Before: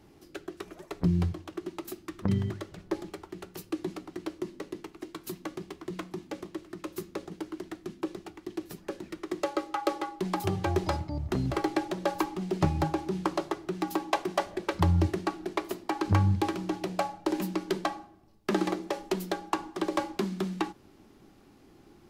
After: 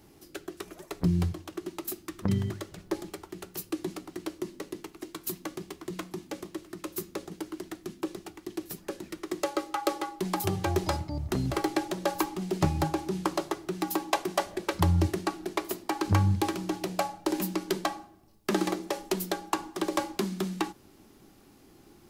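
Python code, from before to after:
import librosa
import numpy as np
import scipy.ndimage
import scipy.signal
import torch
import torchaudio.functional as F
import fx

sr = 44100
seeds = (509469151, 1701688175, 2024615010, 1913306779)

y = fx.high_shelf(x, sr, hz=6300.0, db=11.5)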